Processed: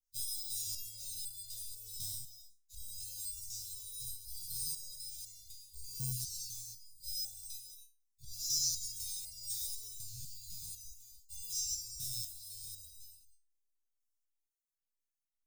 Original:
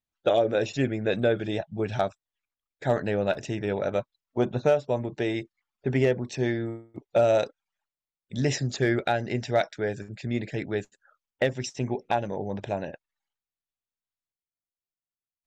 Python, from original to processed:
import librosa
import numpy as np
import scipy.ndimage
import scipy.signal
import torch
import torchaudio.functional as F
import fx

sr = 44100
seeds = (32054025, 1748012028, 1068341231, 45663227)

p1 = fx.spec_dilate(x, sr, span_ms=240)
p2 = fx.peak_eq(p1, sr, hz=240.0, db=10.0, octaves=2.4)
p3 = fx.sample_hold(p2, sr, seeds[0], rate_hz=4500.0, jitter_pct=0)
p4 = p2 + (p3 * 10.0 ** (-7.5 / 20.0))
p5 = scipy.signal.sosfilt(scipy.signal.cheby2(4, 60, [190.0, 1900.0], 'bandstop', fs=sr, output='sos'), p4)
p6 = p5 + fx.echo_single(p5, sr, ms=266, db=-10.0, dry=0)
p7 = fx.resonator_held(p6, sr, hz=4.0, low_hz=130.0, high_hz=700.0)
y = p7 * 10.0 ** (8.5 / 20.0)